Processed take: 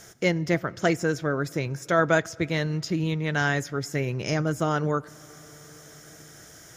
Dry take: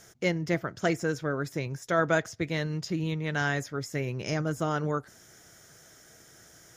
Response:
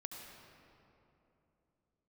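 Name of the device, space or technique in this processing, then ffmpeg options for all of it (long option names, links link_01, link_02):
compressed reverb return: -filter_complex "[0:a]asplit=2[link_01][link_02];[1:a]atrim=start_sample=2205[link_03];[link_02][link_03]afir=irnorm=-1:irlink=0,acompressor=threshold=-46dB:ratio=5,volume=-4.5dB[link_04];[link_01][link_04]amix=inputs=2:normalize=0,volume=3.5dB"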